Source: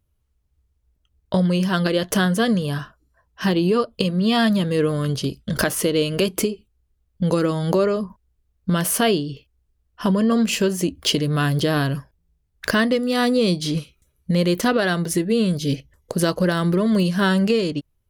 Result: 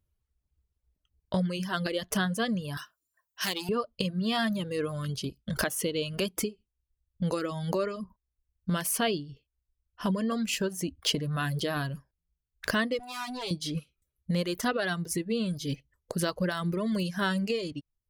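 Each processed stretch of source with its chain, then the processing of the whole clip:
2.77–3.69 s: hard clipper -17.5 dBFS + tilt EQ +4.5 dB/octave
12.99–13.51 s: comb filter that takes the minimum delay 7.3 ms + compression 2.5:1, threshold -22 dBFS + bass shelf 320 Hz -9 dB
whole clip: reverb removal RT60 1 s; dynamic bell 350 Hz, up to -4 dB, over -30 dBFS, Q 1; trim -7 dB

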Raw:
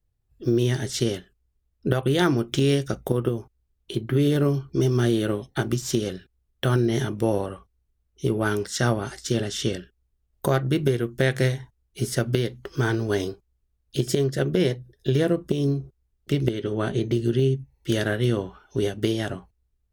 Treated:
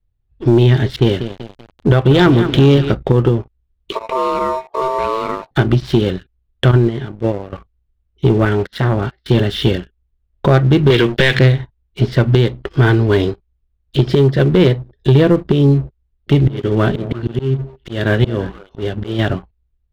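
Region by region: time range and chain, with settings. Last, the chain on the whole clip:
0.96–2.92 s: level-controlled noise filter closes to 520 Hz, open at -19.5 dBFS + bit-crushed delay 192 ms, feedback 55%, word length 6-bit, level -11.5 dB
3.92–5.51 s: dead-time distortion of 0.065 ms + compression 1.5:1, threshold -32 dBFS + ring modulator 780 Hz
6.71–7.53 s: gate -21 dBFS, range -12 dB + treble shelf 4.7 kHz -7 dB
8.45–9.28 s: gate -36 dBFS, range -16 dB + distance through air 150 m + transformer saturation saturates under 820 Hz
10.90–11.39 s: frequency weighting D + compression 2.5:1, threshold -30 dBFS + waveshaping leveller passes 3
16.32–19.19 s: slow attack 250 ms + companded quantiser 8-bit + repeats whose band climbs or falls 112 ms, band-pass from 190 Hz, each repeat 1.4 oct, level -11 dB
whole clip: steep low-pass 4.1 kHz 36 dB/octave; bass shelf 95 Hz +9 dB; waveshaping leveller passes 2; trim +3.5 dB

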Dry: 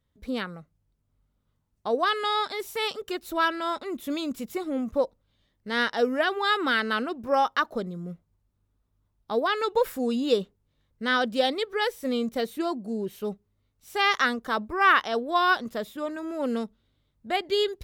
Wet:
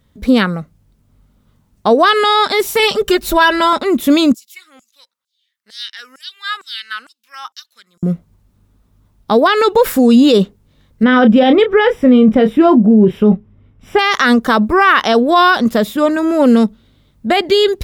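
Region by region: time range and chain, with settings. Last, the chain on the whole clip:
2.79–3.73 s: resonant low shelf 150 Hz +8 dB, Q 1.5 + comb 5 ms, depth 70%
4.34–8.03 s: amplifier tone stack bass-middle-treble 6-0-2 + LFO high-pass saw down 2.2 Hz 740–7200 Hz
11.03–13.99 s: Savitzky-Golay filter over 25 samples + bass shelf 400 Hz +7 dB + doubling 28 ms -10 dB
whole clip: peaking EQ 210 Hz +5.5 dB 0.66 oct; loudness maximiser +19 dB; trim -1 dB

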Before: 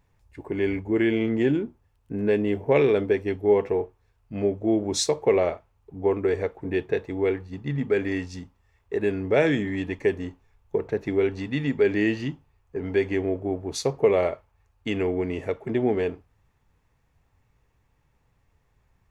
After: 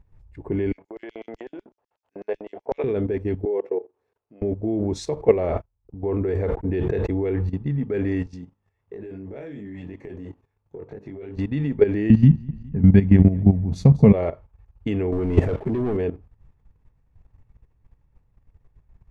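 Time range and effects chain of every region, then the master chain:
0.72–2.84 s: compression 10:1, threshold -22 dBFS + LFO high-pass square 8 Hz 650–5600 Hz + distance through air 92 m
3.45–4.42 s: level held to a coarse grid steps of 23 dB + resonant high-pass 400 Hz, resonance Q 1.7
5.16–7.59 s: gate -46 dBFS, range -54 dB + decay stretcher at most 69 dB/s
8.26–11.37 s: high-pass 140 Hz + compression 12:1, threshold -29 dBFS + chorus 2.9 Hz, delay 20 ms, depth 2.5 ms
12.10–14.13 s: resonant low shelf 270 Hz +10 dB, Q 3 + feedback delay 206 ms, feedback 40%, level -18.5 dB
15.12–15.97 s: waveshaping leveller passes 3 + compressor with a negative ratio -22 dBFS
whole clip: tilt EQ -3 dB/octave; level held to a coarse grid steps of 13 dB; trim +3 dB

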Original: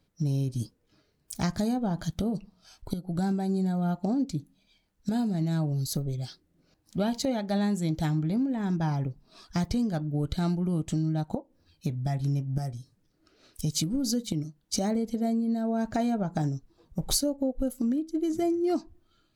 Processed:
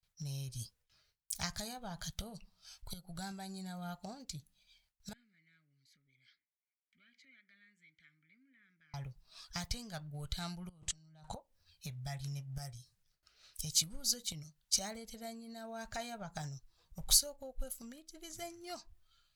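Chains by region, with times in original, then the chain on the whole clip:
5.13–8.94 s: high-order bell 1.6 kHz +16 dB 1.2 oct + compression 2.5:1, threshold -46 dBFS + vowel filter i
10.69–11.34 s: low-pass 10 kHz 24 dB/octave + compressor with a negative ratio -41 dBFS + tape noise reduction on one side only decoder only
whole clip: gate with hold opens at -60 dBFS; amplifier tone stack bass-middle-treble 10-0-10; trim +1 dB

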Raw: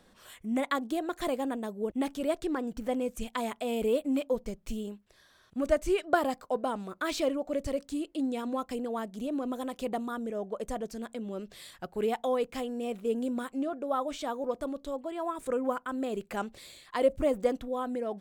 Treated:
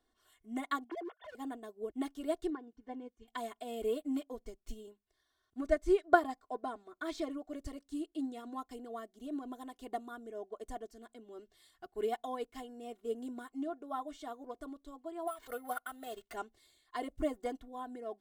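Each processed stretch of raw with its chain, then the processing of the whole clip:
0.84–1.35 s: formants replaced by sine waves + high-pass 270 Hz 24 dB/octave + overload inside the chain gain 32.5 dB
2.50–3.28 s: distance through air 160 m + comb of notches 660 Hz + upward expansion, over -43 dBFS
5.61–7.31 s: treble shelf 8.9 kHz -9.5 dB + band-stop 2.9 kHz
15.27–16.34 s: tilt shelf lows -4 dB, about 700 Hz + comb 1.5 ms, depth 76% + careless resampling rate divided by 4×, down none, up hold
whole clip: band-stop 2.5 kHz, Q 9; comb 2.8 ms, depth 97%; upward expansion 1.5:1, over -47 dBFS; trim -4 dB

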